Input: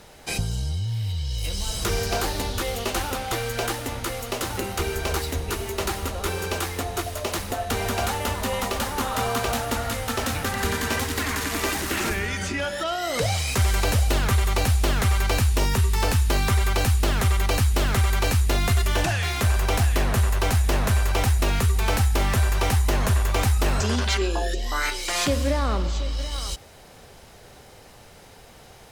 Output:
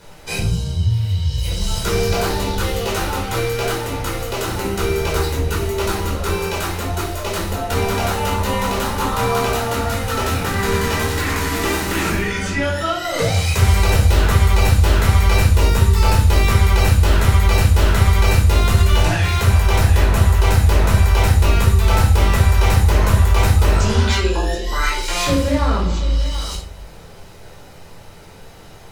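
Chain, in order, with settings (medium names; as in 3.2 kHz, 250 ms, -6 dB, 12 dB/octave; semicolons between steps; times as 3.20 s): simulated room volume 560 m³, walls furnished, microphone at 4.8 m; trim -2.5 dB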